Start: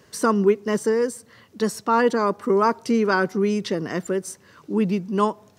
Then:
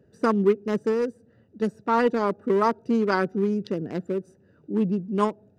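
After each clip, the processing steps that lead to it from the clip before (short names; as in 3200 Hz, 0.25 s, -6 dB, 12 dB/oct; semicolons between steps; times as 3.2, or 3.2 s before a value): Wiener smoothing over 41 samples; gain -1.5 dB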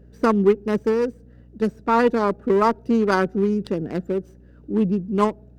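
hum 60 Hz, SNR 27 dB; running maximum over 3 samples; gain +3.5 dB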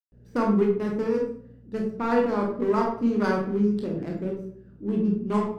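reverb RT60 0.60 s, pre-delay 0.121 s; gain +3 dB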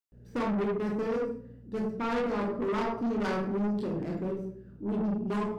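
soft clip -26.5 dBFS, distortion -8 dB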